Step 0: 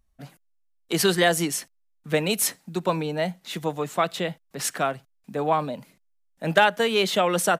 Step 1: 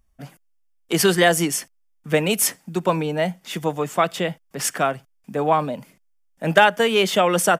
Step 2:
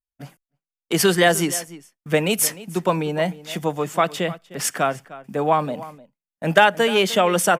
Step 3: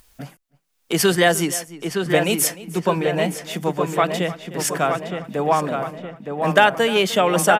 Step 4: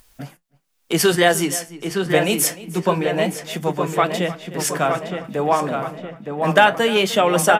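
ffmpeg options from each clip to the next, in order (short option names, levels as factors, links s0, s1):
-af "bandreject=f=4000:w=5.9,volume=1.58"
-filter_complex "[0:a]asplit=2[s0][s1];[s1]adelay=303.2,volume=0.141,highshelf=f=4000:g=-6.82[s2];[s0][s2]amix=inputs=2:normalize=0,agate=range=0.0224:threshold=0.0112:ratio=3:detection=peak"
-filter_complex "[0:a]acompressor=mode=upward:threshold=0.0398:ratio=2.5,asplit=2[s0][s1];[s1]adelay=916,lowpass=f=2800:p=1,volume=0.531,asplit=2[s2][s3];[s3]adelay=916,lowpass=f=2800:p=1,volume=0.52,asplit=2[s4][s5];[s5]adelay=916,lowpass=f=2800:p=1,volume=0.52,asplit=2[s6][s7];[s7]adelay=916,lowpass=f=2800:p=1,volume=0.52,asplit=2[s8][s9];[s9]adelay=916,lowpass=f=2800:p=1,volume=0.52,asplit=2[s10][s11];[s11]adelay=916,lowpass=f=2800:p=1,volume=0.52,asplit=2[s12][s13];[s13]adelay=916,lowpass=f=2800:p=1,volume=0.52[s14];[s0][s2][s4][s6][s8][s10][s12][s14]amix=inputs=8:normalize=0"
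-af "flanger=delay=7.8:depth=8.2:regen=-64:speed=0.27:shape=sinusoidal,volume=1.78"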